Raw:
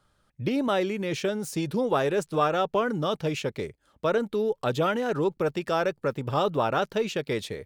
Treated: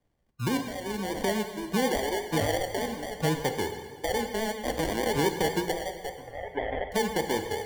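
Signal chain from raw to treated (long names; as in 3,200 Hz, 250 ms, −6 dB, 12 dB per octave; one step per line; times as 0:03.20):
0:04.22–0:05.07: sub-harmonics by changed cycles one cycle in 2, muted
brickwall limiter −19.5 dBFS, peak gain reduction 7.5 dB
sample-and-hold tremolo, depth 80%
treble cut that deepens with the level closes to 1,800 Hz, closed at −28.5 dBFS
decimation without filtering 34×
0:06.09–0:06.92: inverse Chebyshev low-pass filter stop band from 6,400 Hz, stop band 50 dB
noise reduction from a noise print of the clip's start 15 dB
convolution reverb RT60 1.2 s, pre-delay 6 ms, DRR 6 dB
pitch vibrato 8.2 Hz 43 cents
multiband upward and downward compressor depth 40%
level +2.5 dB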